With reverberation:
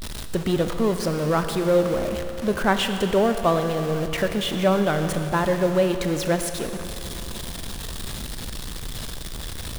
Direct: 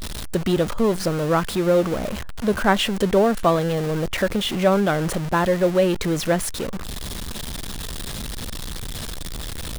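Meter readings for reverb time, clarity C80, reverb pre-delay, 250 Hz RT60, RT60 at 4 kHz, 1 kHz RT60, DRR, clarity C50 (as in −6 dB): 2.9 s, 8.0 dB, 32 ms, 2.9 s, 2.9 s, 2.9 s, 7.0 dB, 7.5 dB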